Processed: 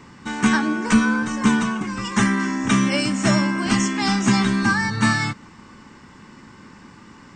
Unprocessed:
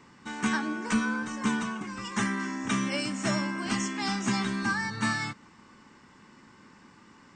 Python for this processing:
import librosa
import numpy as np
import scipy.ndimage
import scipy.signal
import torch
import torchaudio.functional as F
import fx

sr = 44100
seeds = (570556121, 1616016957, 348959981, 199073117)

y = fx.low_shelf(x, sr, hz=150.0, db=7.5)
y = y * 10.0 ** (8.5 / 20.0)